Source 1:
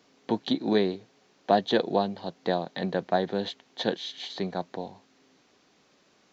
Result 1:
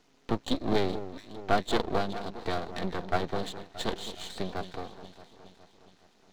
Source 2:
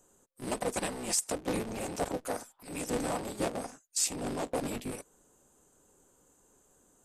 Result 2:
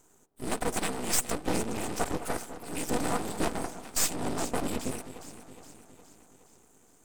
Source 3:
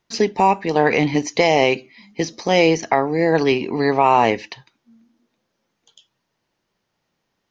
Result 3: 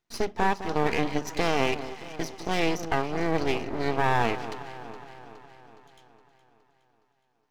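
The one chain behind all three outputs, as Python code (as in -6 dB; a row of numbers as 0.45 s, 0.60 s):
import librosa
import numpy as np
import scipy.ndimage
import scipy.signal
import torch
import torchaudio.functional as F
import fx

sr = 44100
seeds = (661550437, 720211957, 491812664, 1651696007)

y = fx.notch_comb(x, sr, f0_hz=560.0)
y = fx.echo_alternate(y, sr, ms=208, hz=910.0, feedback_pct=73, wet_db=-11)
y = np.maximum(y, 0.0)
y = librosa.util.normalize(y) * 10.0 ** (-9 / 20.0)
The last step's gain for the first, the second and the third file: +2.0 dB, +8.0 dB, -5.0 dB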